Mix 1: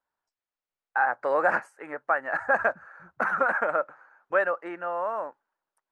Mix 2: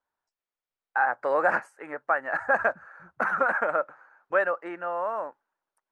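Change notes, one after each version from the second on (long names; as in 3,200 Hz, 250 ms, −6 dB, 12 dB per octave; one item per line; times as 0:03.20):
nothing changed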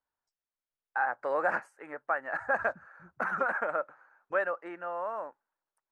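first voice −5.5 dB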